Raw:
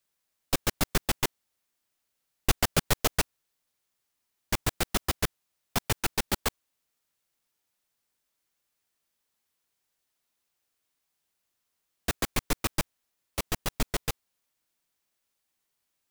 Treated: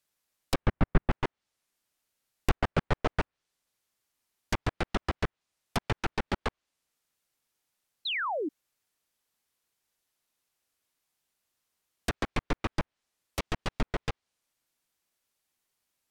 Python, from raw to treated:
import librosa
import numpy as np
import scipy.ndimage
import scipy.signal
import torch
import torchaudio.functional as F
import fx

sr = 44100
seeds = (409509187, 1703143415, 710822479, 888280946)

y = fx.bass_treble(x, sr, bass_db=7, treble_db=-14, at=(0.62, 1.11))
y = fx.env_lowpass_down(y, sr, base_hz=1800.0, full_db=-24.5)
y = fx.spec_paint(y, sr, seeds[0], shape='fall', start_s=8.05, length_s=0.44, low_hz=270.0, high_hz=4300.0, level_db=-31.0)